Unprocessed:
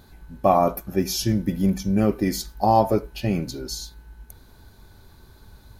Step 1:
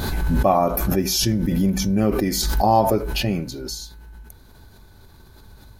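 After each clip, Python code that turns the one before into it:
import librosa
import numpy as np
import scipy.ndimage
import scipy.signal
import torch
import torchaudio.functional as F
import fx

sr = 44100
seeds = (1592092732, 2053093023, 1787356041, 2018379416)

y = fx.pre_swell(x, sr, db_per_s=24.0)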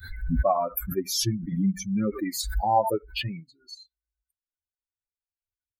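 y = fx.bin_expand(x, sr, power=3.0)
y = F.gain(torch.from_numpy(y), -1.0).numpy()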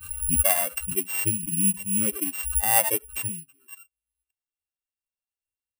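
y = np.r_[np.sort(x[:len(x) // 16 * 16].reshape(-1, 16), axis=1).ravel(), x[len(x) // 16 * 16:]]
y = (np.kron(scipy.signal.resample_poly(y, 1, 4), np.eye(4)[0]) * 4)[:len(y)]
y = F.gain(torch.from_numpy(y), -4.5).numpy()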